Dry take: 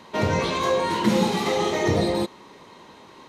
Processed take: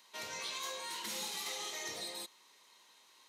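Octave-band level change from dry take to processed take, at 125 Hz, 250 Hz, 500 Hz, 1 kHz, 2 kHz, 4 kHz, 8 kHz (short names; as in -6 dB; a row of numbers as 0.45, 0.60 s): -37.5, -32.0, -26.5, -20.5, -14.5, -9.0, -4.0 dB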